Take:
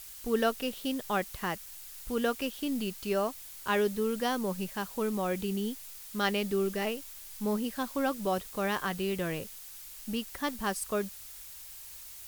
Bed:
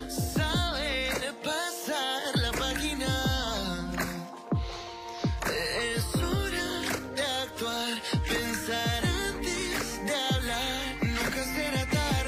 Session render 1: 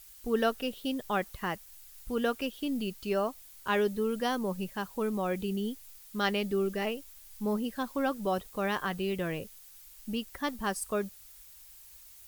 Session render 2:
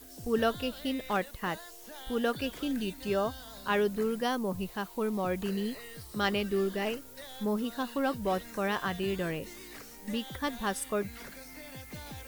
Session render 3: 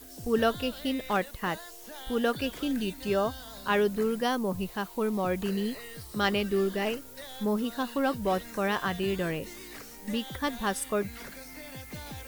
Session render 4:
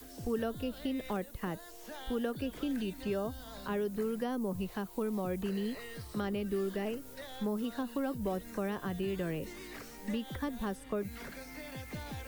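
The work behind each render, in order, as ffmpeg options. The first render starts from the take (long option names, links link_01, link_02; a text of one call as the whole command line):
ffmpeg -i in.wav -af "afftdn=noise_reduction=8:noise_floor=-47" out.wav
ffmpeg -i in.wav -i bed.wav -filter_complex "[1:a]volume=-17dB[link_01];[0:a][link_01]amix=inputs=2:normalize=0" out.wav
ffmpeg -i in.wav -af "volume=2.5dB" out.wav
ffmpeg -i in.wav -filter_complex "[0:a]acrossover=split=510|6900[link_01][link_02][link_03];[link_01]acompressor=threshold=-33dB:ratio=4[link_04];[link_02]acompressor=threshold=-43dB:ratio=4[link_05];[link_03]acompressor=threshold=-50dB:ratio=4[link_06];[link_04][link_05][link_06]amix=inputs=3:normalize=0,acrossover=split=170|590|2800[link_07][link_08][link_09][link_10];[link_10]alimiter=level_in=20dB:limit=-24dB:level=0:latency=1:release=236,volume=-20dB[link_11];[link_07][link_08][link_09][link_11]amix=inputs=4:normalize=0" out.wav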